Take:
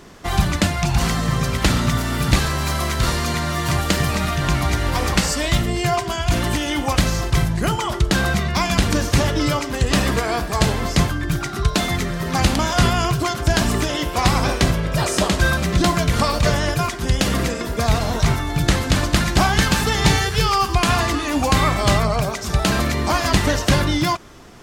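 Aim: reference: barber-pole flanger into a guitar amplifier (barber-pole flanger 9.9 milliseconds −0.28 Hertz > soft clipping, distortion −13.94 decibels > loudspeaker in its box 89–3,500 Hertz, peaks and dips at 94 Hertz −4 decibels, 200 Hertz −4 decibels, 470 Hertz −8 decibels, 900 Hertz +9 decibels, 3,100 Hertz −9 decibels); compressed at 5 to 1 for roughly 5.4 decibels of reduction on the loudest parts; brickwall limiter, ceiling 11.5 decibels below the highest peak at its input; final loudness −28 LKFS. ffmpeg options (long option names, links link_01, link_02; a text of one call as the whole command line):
ffmpeg -i in.wav -filter_complex "[0:a]acompressor=threshold=-17dB:ratio=5,alimiter=limit=-17dB:level=0:latency=1,asplit=2[link_01][link_02];[link_02]adelay=9.9,afreqshift=-0.28[link_03];[link_01][link_03]amix=inputs=2:normalize=1,asoftclip=threshold=-26dB,highpass=89,equalizer=frequency=94:width_type=q:width=4:gain=-4,equalizer=frequency=200:width_type=q:width=4:gain=-4,equalizer=frequency=470:width_type=q:width=4:gain=-8,equalizer=frequency=900:width_type=q:width=4:gain=9,equalizer=frequency=3100:width_type=q:width=4:gain=-9,lowpass=frequency=3500:width=0.5412,lowpass=frequency=3500:width=1.3066,volume=5dB" out.wav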